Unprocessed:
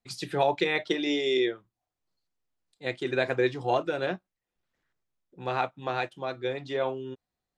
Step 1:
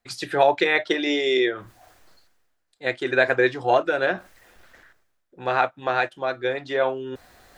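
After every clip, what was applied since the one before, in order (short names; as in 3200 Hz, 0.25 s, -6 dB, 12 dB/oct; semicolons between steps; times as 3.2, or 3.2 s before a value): fifteen-band EQ 160 Hz -8 dB, 630 Hz +4 dB, 1600 Hz +8 dB; reverse; upward compressor, threshold -33 dBFS; reverse; gain +4 dB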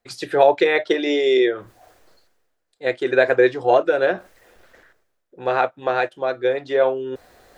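bell 470 Hz +8 dB 1 oct; gain -1 dB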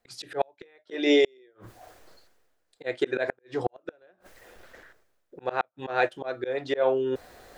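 auto swell 0.213 s; flipped gate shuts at -12 dBFS, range -40 dB; gain +1 dB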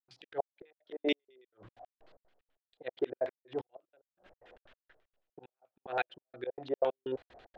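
step gate ".xx.x..xx" 187 bpm -60 dB; LFO low-pass square 9.2 Hz 720–3100 Hz; gain -8.5 dB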